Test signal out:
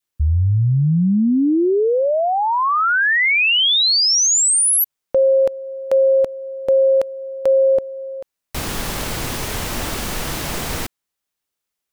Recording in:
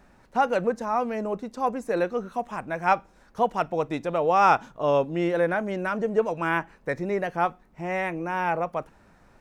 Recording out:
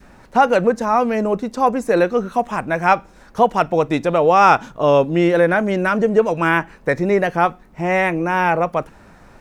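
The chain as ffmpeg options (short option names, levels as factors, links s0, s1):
-filter_complex "[0:a]adynamicequalizer=threshold=0.0141:dfrequency=800:dqfactor=1.1:tfrequency=800:tqfactor=1.1:attack=5:release=100:ratio=0.375:range=1.5:mode=cutabove:tftype=bell,asplit=2[s0][s1];[s1]alimiter=limit=0.133:level=0:latency=1:release=159,volume=0.891[s2];[s0][s2]amix=inputs=2:normalize=0,volume=1.88"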